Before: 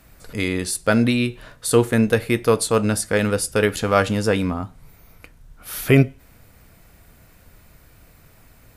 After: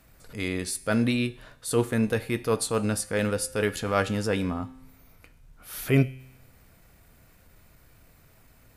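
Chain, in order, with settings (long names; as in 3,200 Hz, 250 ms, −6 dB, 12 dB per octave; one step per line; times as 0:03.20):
tuned comb filter 130 Hz, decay 0.91 s, harmonics all, mix 50%
transient designer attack −5 dB, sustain −1 dB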